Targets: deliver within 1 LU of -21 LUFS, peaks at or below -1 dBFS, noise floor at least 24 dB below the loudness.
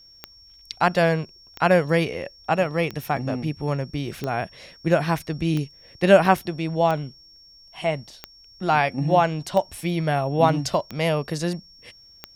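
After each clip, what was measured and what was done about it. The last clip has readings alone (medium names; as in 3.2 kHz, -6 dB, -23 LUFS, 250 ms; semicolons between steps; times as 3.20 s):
clicks found 10; steady tone 5.5 kHz; tone level -48 dBFS; loudness -23.0 LUFS; peak level -2.0 dBFS; loudness target -21.0 LUFS
-> de-click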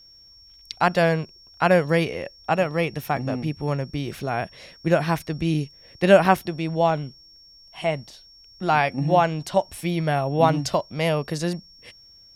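clicks found 0; steady tone 5.5 kHz; tone level -48 dBFS
-> band-stop 5.5 kHz, Q 30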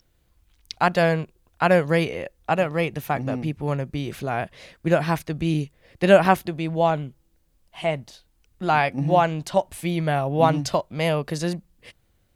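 steady tone not found; loudness -23.0 LUFS; peak level -2.0 dBFS; loudness target -21.0 LUFS
-> trim +2 dB; peak limiter -1 dBFS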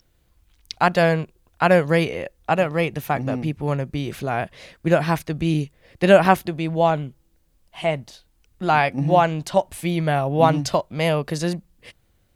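loudness -21.0 LUFS; peak level -1.0 dBFS; noise floor -63 dBFS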